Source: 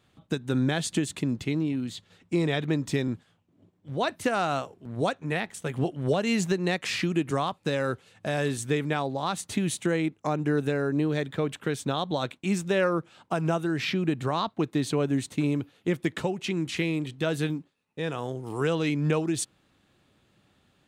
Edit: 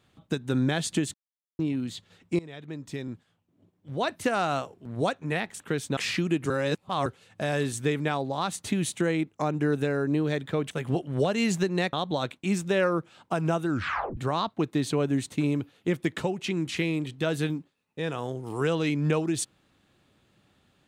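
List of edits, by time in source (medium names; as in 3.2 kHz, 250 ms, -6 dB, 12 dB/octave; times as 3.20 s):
1.14–1.59 s: mute
2.39–4.21 s: fade in linear, from -20.5 dB
5.60–6.82 s: swap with 11.56–11.93 s
7.35–7.91 s: reverse
13.68 s: tape stop 0.49 s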